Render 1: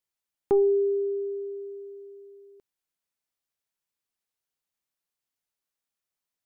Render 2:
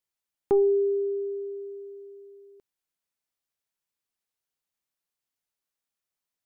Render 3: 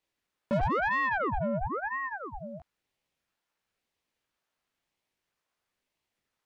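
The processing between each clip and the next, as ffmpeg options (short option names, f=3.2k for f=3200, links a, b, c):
-af anull
-filter_complex "[0:a]flanger=delay=17:depth=5:speed=2,asplit=2[a][b];[b]highpass=f=720:p=1,volume=31dB,asoftclip=type=tanh:threshold=-15.5dB[c];[a][c]amix=inputs=2:normalize=0,lowpass=f=1.1k:p=1,volume=-6dB,aeval=exprs='val(0)*sin(2*PI*830*n/s+830*0.8/1*sin(2*PI*1*n/s))':c=same,volume=-3dB"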